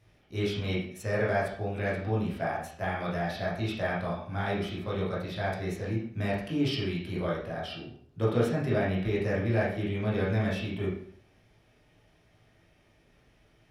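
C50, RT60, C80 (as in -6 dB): 3.5 dB, 0.55 s, 7.5 dB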